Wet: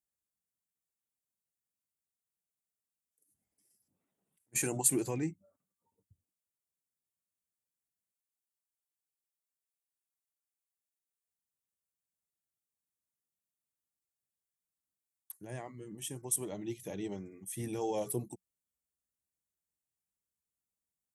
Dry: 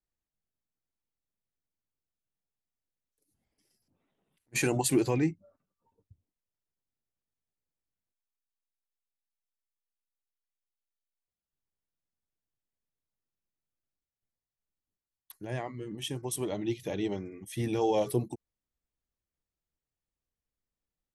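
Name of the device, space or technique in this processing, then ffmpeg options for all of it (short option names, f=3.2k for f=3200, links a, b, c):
budget condenser microphone: -af "highpass=64,equalizer=f=190:t=o:w=0.21:g=4.5,highshelf=f=6k:t=q:w=1.5:g=10,volume=-7.5dB"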